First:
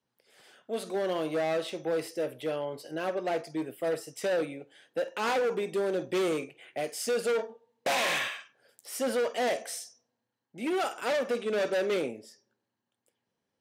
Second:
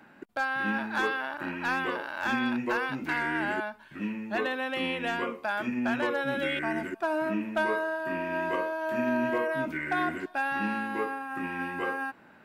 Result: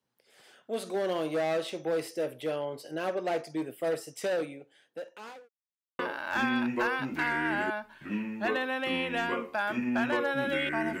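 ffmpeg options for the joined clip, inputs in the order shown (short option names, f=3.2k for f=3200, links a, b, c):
-filter_complex "[0:a]apad=whole_dur=11,atrim=end=11,asplit=2[a][b];[a]atrim=end=5.49,asetpts=PTS-STARTPTS,afade=t=out:st=4.11:d=1.38[c];[b]atrim=start=5.49:end=5.99,asetpts=PTS-STARTPTS,volume=0[d];[1:a]atrim=start=1.89:end=6.9,asetpts=PTS-STARTPTS,afade=t=in:d=0.004:c=hsin[e];[c][d][e]concat=n=3:v=0:a=1"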